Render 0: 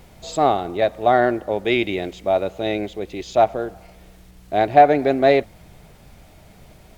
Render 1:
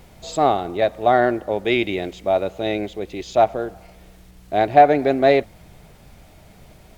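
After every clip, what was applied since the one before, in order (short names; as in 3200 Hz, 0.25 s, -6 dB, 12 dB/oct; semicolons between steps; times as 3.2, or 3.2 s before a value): nothing audible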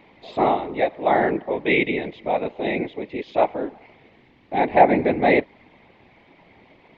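speaker cabinet 210–3500 Hz, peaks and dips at 300 Hz +6 dB, 650 Hz -3 dB, 930 Hz +5 dB, 1400 Hz -7 dB, 2100 Hz +8 dB; whisperiser; gain -2 dB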